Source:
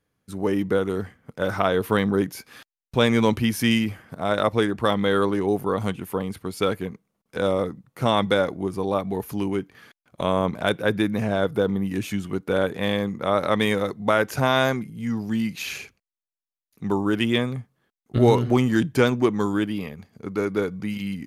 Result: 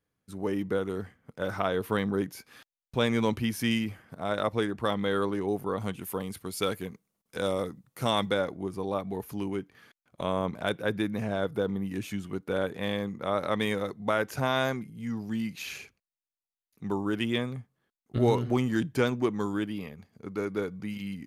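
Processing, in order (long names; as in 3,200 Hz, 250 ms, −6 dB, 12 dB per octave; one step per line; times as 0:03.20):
0:05.93–0:08.29: high-shelf EQ 3,800 Hz +10.5 dB
level −7 dB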